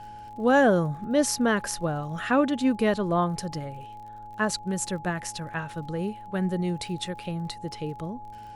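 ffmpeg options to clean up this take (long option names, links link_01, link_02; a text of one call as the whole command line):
ffmpeg -i in.wav -af "adeclick=threshold=4,bandreject=frequency=109.4:width_type=h:width=4,bandreject=frequency=218.8:width_type=h:width=4,bandreject=frequency=328.2:width_type=h:width=4,bandreject=frequency=437.6:width_type=h:width=4,bandreject=frequency=547:width_type=h:width=4,bandreject=frequency=656.4:width_type=h:width=4,bandreject=frequency=840:width=30" out.wav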